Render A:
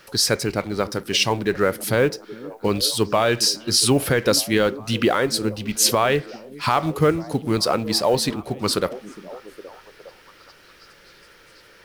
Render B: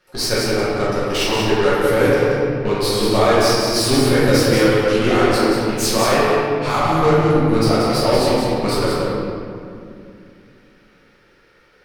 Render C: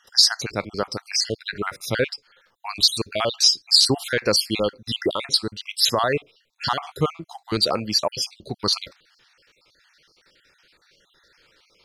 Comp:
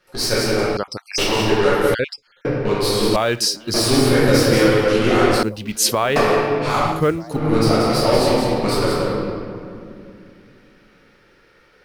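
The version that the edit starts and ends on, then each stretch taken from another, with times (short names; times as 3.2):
B
0.77–1.18 from C
1.94–2.45 from C
3.16–3.74 from A
5.43–6.16 from A
6.94–7.42 from A, crossfade 0.24 s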